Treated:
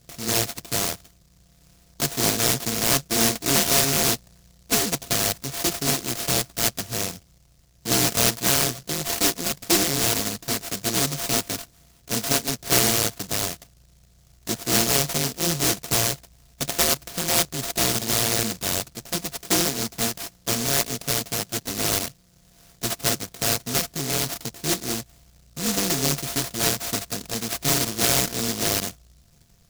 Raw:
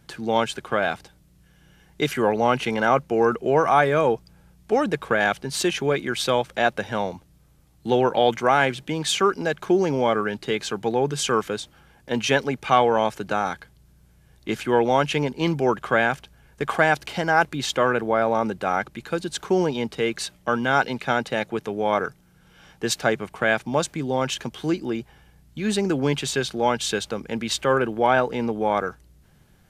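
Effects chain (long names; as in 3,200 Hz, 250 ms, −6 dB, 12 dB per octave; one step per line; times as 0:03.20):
samples sorted by size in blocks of 64 samples
low-pass filter 1,200 Hz 12 dB per octave
short delay modulated by noise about 5,500 Hz, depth 0.36 ms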